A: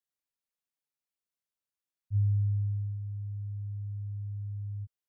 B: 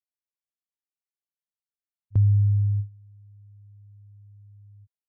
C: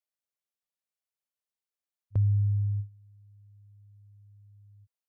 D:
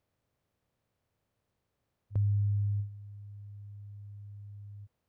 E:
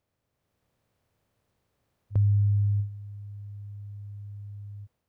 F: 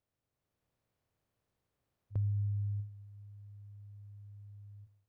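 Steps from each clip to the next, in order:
noise gate with hold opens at −23 dBFS; level +8 dB
drawn EQ curve 350 Hz 0 dB, 540 Hz +9 dB, 770 Hz +5 dB; level −5.5 dB
compressor on every frequency bin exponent 0.6; level −4.5 dB
automatic gain control gain up to 6 dB
convolution reverb RT60 0.80 s, pre-delay 3 ms, DRR 17.5 dB; level −9 dB

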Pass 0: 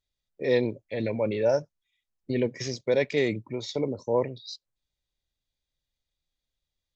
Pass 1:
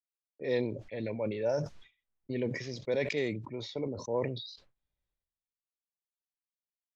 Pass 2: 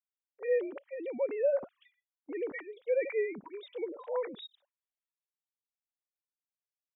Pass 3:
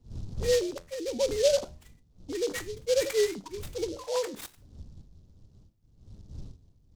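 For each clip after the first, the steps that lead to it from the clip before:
low-pass that shuts in the quiet parts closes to 2,000 Hz, open at −19.5 dBFS; downward expander −52 dBFS; level that may fall only so fast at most 60 dB per second; level −7.5 dB
three sine waves on the formant tracks
wind on the microphone 95 Hz −49 dBFS; flanger 0.34 Hz, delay 8.6 ms, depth 5.6 ms, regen +77%; short delay modulated by noise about 4,600 Hz, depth 0.073 ms; level +9 dB

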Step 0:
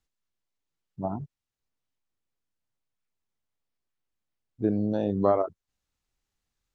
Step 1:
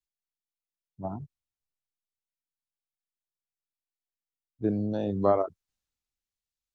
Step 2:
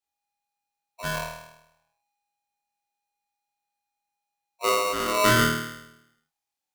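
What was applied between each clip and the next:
multiband upward and downward expander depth 40%; level −3 dB
flutter between parallel walls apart 4.4 metres, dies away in 0.86 s; ring modulator with a square carrier 820 Hz

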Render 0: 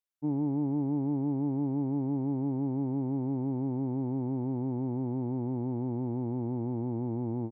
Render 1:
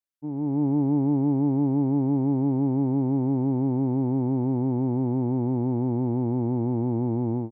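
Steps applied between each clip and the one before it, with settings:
automatic gain control gain up to 11 dB
level −3.5 dB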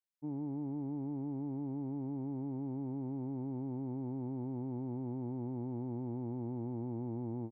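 brickwall limiter −25.5 dBFS, peak gain reduction 10.5 dB
level −7 dB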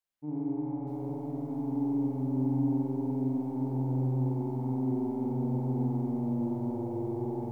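spring reverb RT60 2.9 s, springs 46 ms, chirp 40 ms, DRR −6 dB
feedback echo at a low word length 644 ms, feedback 55%, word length 10 bits, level −12 dB
level +1 dB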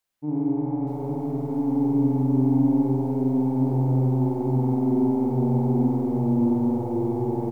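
single-tap delay 327 ms −7 dB
level +8.5 dB

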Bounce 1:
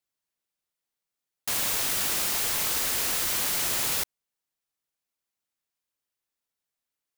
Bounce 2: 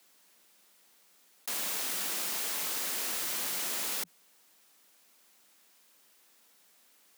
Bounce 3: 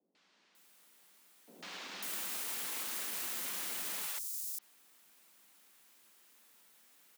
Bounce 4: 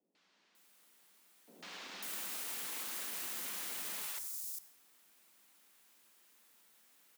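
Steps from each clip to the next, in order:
Butterworth high-pass 170 Hz 96 dB per octave; envelope flattener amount 50%; level −7 dB
brickwall limiter −29 dBFS, peak gain reduction 7 dB; three-band delay without the direct sound lows, mids, highs 150/550 ms, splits 560/5,300 Hz
convolution reverb RT60 1.3 s, pre-delay 53 ms, DRR 12.5 dB; level −2.5 dB

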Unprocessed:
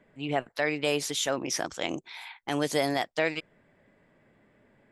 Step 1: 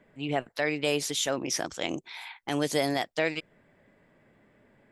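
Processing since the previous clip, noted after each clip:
dynamic equaliser 1,100 Hz, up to −3 dB, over −41 dBFS, Q 0.73
level +1 dB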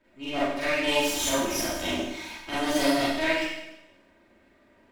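lower of the sound and its delayed copy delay 3.2 ms
four-comb reverb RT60 0.89 s, combs from 32 ms, DRR −9.5 dB
level −6 dB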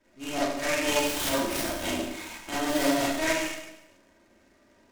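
short delay modulated by noise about 3,800 Hz, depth 0.045 ms
level −1 dB

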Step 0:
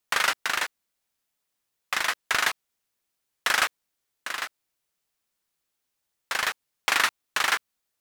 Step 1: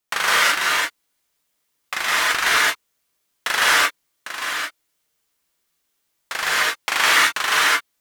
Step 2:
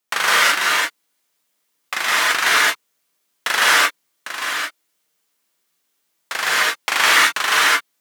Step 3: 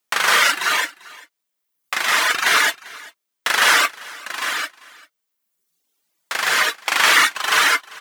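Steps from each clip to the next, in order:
reverb whose tail is shaped and stops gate 240 ms rising, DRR −7.5 dB
high-pass filter 150 Hz 24 dB per octave; level +2 dB
reverb reduction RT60 1.3 s; single-tap delay 394 ms −21.5 dB; level +1.5 dB

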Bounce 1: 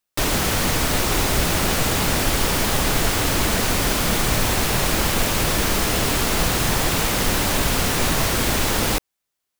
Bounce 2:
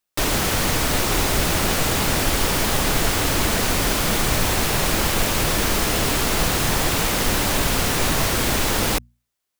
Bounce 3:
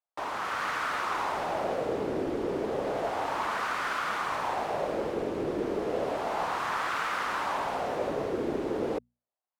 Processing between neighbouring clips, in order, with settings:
mains-hum notches 60/120/180/240 Hz
automatic gain control gain up to 4 dB; LFO wah 0.32 Hz 380–1,300 Hz, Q 2.4; level −3 dB

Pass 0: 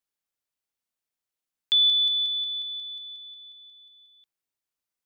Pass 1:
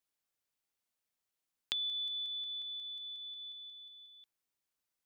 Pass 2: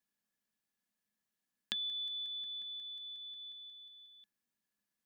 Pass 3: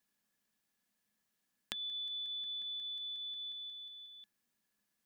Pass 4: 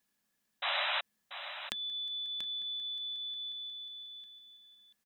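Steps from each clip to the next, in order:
downward compressor 2.5 to 1, threshold −34 dBFS, peak gain reduction 10.5 dB; dynamic equaliser 3,800 Hz, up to −7 dB, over −44 dBFS, Q 1.1
hollow resonant body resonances 210/1,700 Hz, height 17 dB, ringing for 70 ms; level −2 dB
downward compressor, threshold −45 dBFS, peak gain reduction 11.5 dB; level +5.5 dB
sound drawn into the spectrogram noise, 0:00.62–0:01.01, 550–4,000 Hz −35 dBFS; single-tap delay 686 ms −10.5 dB; level +2.5 dB

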